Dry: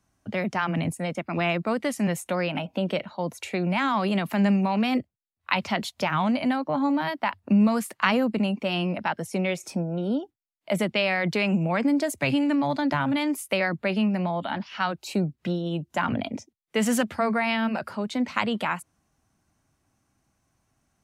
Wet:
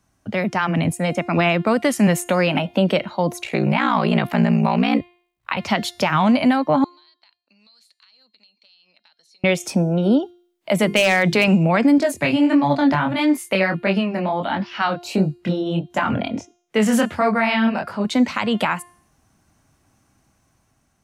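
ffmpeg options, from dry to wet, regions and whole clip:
ffmpeg -i in.wav -filter_complex "[0:a]asettb=1/sr,asplit=3[link_01][link_02][link_03];[link_01]atrim=end=3.414[link_04];[link_02]atrim=start=3.41:end=5.57,asetpts=PTS-STARTPTS,afade=type=in:duration=0.004:curve=qsin,afade=type=out:start_time=2.156:duration=0.004:curve=qsin,acrossover=split=4500[link_05][link_06];[link_06]acompressor=threshold=-55dB:ratio=4:attack=1:release=60[link_07];[link_05][link_07]amix=inputs=2:normalize=0,aeval=exprs='val(0)*sin(2*PI*30*n/s)':channel_layout=same[link_08];[link_03]atrim=start=5.566[link_09];[link_04][link_08]acrossfade=duration=0.004:curve1=hsin:curve2=qsin[link_10];[link_10][link_09]acrossfade=duration=0.004:curve1=qsin:curve2=hsin,asettb=1/sr,asplit=3[link_11][link_12][link_13];[link_11]atrim=end=6.844[link_14];[link_12]atrim=start=6.84:end=9.44,asetpts=PTS-STARTPTS,afade=type=in:duration=0.004:curve=qsin,afade=type=out:start_time=2.596:duration=0.004:curve=qsin,bandpass=frequency=4200:width_type=q:width=19,acompressor=threshold=-60dB:ratio=12:attack=3.2:release=140:knee=1:detection=peak[link_15];[link_13]atrim=start=9.436[link_16];[link_14][link_15]acrossfade=duration=0.004:curve1=hsin:curve2=qsin[link_17];[link_17][link_16]acrossfade=duration=0.004:curve1=qsin:curve2=hsin,asettb=1/sr,asplit=3[link_18][link_19][link_20];[link_18]atrim=end=10.804[link_21];[link_19]atrim=start=10.8:end=11.48,asetpts=PTS-STARTPTS,afade=type=in:duration=0.004:curve=qsin,afade=type=out:start_time=0.676:duration=0.004:curve=qsin,bandreject=frequency=50:width_type=h:width=6,bandreject=frequency=100:width_type=h:width=6,bandreject=frequency=150:width_type=h:width=6,bandreject=frequency=200:width_type=h:width=6,bandreject=frequency=250:width_type=h:width=6,bandreject=frequency=300:width_type=h:width=6,bandreject=frequency=350:width_type=h:width=6,bandreject=frequency=400:width_type=h:width=6,bandreject=frequency=450:width_type=h:width=6,aeval=exprs='0.158*(abs(mod(val(0)/0.158+3,4)-2)-1)':channel_layout=same[link_22];[link_20]atrim=start=11.476[link_23];[link_21][link_22]acrossfade=duration=0.004:curve1=hsin:curve2=qsin[link_24];[link_24][link_23]acrossfade=duration=0.004:curve1=qsin:curve2=hsin,asettb=1/sr,asplit=3[link_25][link_26][link_27];[link_25]atrim=end=11.984[link_28];[link_26]atrim=start=11.98:end=18.05,asetpts=PTS-STARTPTS,afade=type=in:duration=0.004:curve=qsin,afade=type=out:start_time=6.066:duration=0.004:curve=qsin,highshelf=frequency=5200:gain=-5.5,flanger=delay=20:depth=6.3:speed=1.5[link_29];[link_27]atrim=start=18.046[link_30];[link_28][link_29]acrossfade=duration=0.004:curve1=hsin:curve2=qsin[link_31];[link_31][link_30]acrossfade=duration=0.004:curve1=qsin:curve2=hsin,dynaudnorm=framelen=400:gausssize=5:maxgain=4.5dB,alimiter=limit=-13dB:level=0:latency=1:release=215,bandreject=frequency=352.1:width_type=h:width=4,bandreject=frequency=704.2:width_type=h:width=4,bandreject=frequency=1056.3:width_type=h:width=4,bandreject=frequency=1408.4:width_type=h:width=4,bandreject=frequency=1760.5:width_type=h:width=4,bandreject=frequency=2112.6:width_type=h:width=4,bandreject=frequency=2464.7:width_type=h:width=4,bandreject=frequency=2816.8:width_type=h:width=4,bandreject=frequency=3168.9:width_type=h:width=4,bandreject=frequency=3521:width_type=h:width=4,bandreject=frequency=3873.1:width_type=h:width=4,bandreject=frequency=4225.2:width_type=h:width=4,bandreject=frequency=4577.3:width_type=h:width=4,bandreject=frequency=4929.4:width_type=h:width=4,bandreject=frequency=5281.5:width_type=h:width=4,bandreject=frequency=5633.6:width_type=h:width=4,bandreject=frequency=5985.7:width_type=h:width=4,bandreject=frequency=6337.8:width_type=h:width=4,bandreject=frequency=6689.9:width_type=h:width=4,bandreject=frequency=7042:width_type=h:width=4,bandreject=frequency=7394.1:width_type=h:width=4,bandreject=frequency=7746.2:width_type=h:width=4,bandreject=frequency=8098.3:width_type=h:width=4,bandreject=frequency=8450.4:width_type=h:width=4,bandreject=frequency=8802.5:width_type=h:width=4,bandreject=frequency=9154.6:width_type=h:width=4,bandreject=frequency=9506.7:width_type=h:width=4,bandreject=frequency=9858.8:width_type=h:width=4,bandreject=frequency=10210.9:width_type=h:width=4,bandreject=frequency=10563:width_type=h:width=4,bandreject=frequency=10915.1:width_type=h:width=4,bandreject=frequency=11267.2:width_type=h:width=4,bandreject=frequency=11619.3:width_type=h:width=4,bandreject=frequency=11971.4:width_type=h:width=4,bandreject=frequency=12323.5:width_type=h:width=4,bandreject=frequency=12675.6:width_type=h:width=4,bandreject=frequency=13027.7:width_type=h:width=4,bandreject=frequency=13379.8:width_type=h:width=4,bandreject=frequency=13731.9:width_type=h:width=4,volume=5.5dB" out.wav

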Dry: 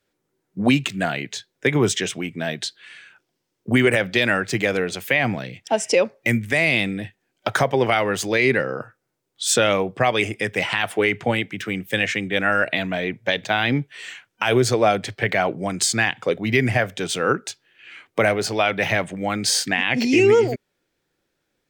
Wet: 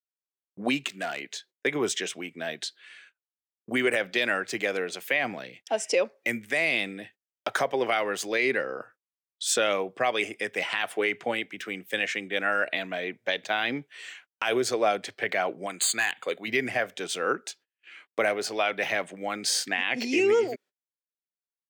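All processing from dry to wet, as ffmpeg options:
ffmpeg -i in.wav -filter_complex "[0:a]asettb=1/sr,asplit=3[link_01][link_02][link_03];[link_01]atrim=end=0.884[link_04];[link_02]atrim=start=0.88:end=1.51,asetpts=PTS-STARTPTS,afade=type=in:duration=0.004:curve=qsin,afade=type=out:start_time=0.626:duration=0.004:curve=qsin,highpass=frequency=200:poles=1,asoftclip=type=hard:threshold=-19dB[link_05];[link_03]atrim=start=1.506[link_06];[link_04][link_05]acrossfade=duration=0.004:curve1=hsin:curve2=qsin[link_07];[link_07][link_06]acrossfade=duration=0.004:curve1=qsin:curve2=hsin,asettb=1/sr,asplit=3[link_08][link_09][link_10];[link_08]atrim=end=15.664[link_11];[link_09]atrim=start=15.66:end=16.48,asetpts=PTS-STARTPTS,afade=type=in:duration=0.004:curve=qsin,afade=type=out:start_time=0.816:duration=0.004:curve=qsin,tiltshelf=frequency=920:gain=-4.5,asoftclip=type=hard:threshold=-13dB,asuperstop=centerf=5500:order=8:qfactor=3.4[link_12];[link_10]atrim=start=16.476[link_13];[link_11][link_12]acrossfade=duration=0.004:curve1=hsin:curve2=qsin[link_14];[link_14][link_13]acrossfade=duration=0.004:curve1=qsin:curve2=hsin,highpass=310,bandreject=frequency=890:width=17,agate=range=-32dB:threshold=-45dB:ratio=16:detection=peak,volume=-6dB" out.wav

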